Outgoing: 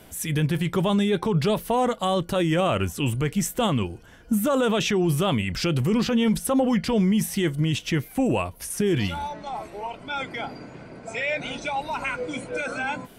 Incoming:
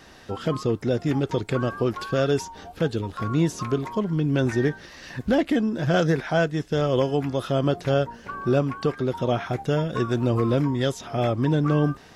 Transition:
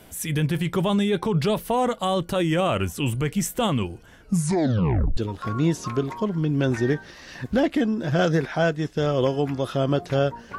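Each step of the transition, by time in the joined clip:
outgoing
0:04.19: tape stop 0.98 s
0:05.17: continue with incoming from 0:02.92

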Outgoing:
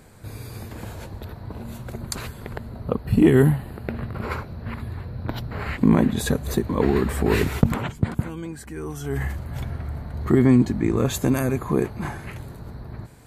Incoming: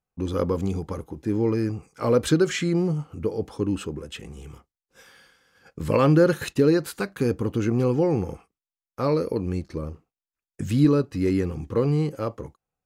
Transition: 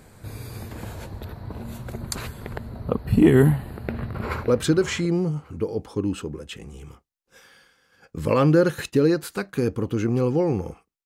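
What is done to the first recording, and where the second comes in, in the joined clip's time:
outgoing
0:03.77–0:04.48: delay throw 570 ms, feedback 15%, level −9.5 dB
0:04.48: continue with incoming from 0:02.11

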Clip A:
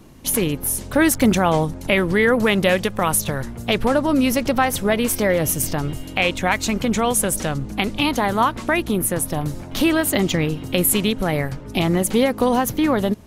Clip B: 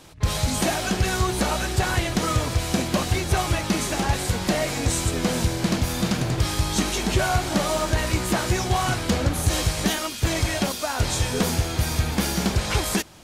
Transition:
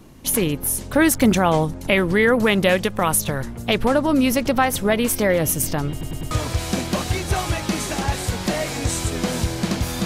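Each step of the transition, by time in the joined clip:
clip A
0:05.91: stutter in place 0.10 s, 4 plays
0:06.31: continue with clip B from 0:02.32

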